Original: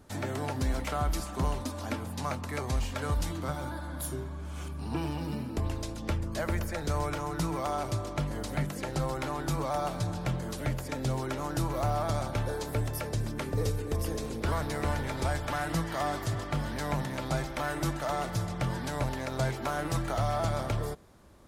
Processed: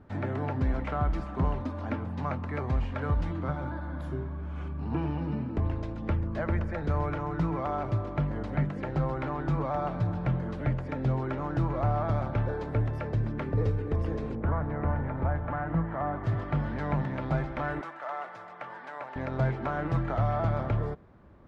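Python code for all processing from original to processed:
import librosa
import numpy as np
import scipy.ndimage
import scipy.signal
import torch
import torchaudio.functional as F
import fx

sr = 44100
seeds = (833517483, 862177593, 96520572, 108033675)

y = fx.chain(x, sr, fx.lowpass(hz=1500.0, slope=12),
    fx.peak_eq(hz=380.0, db=-4.5, octaves=0.44), at=(14.35, 16.24))
y = fx.chain(y, sr, fx.highpass(hz=810.0, slope=12),
    fx.peak_eq(hz=4300.0, db=-5.0, octaves=1.8), at=(17.81, 19.16))
y = scipy.signal.sosfilt(scipy.signal.cheby1(2, 1.0, 1800.0, 'lowpass', fs=sr, output='sos'), y)
y = fx.peak_eq(y, sr, hz=130.0, db=5.0, octaves=2.7)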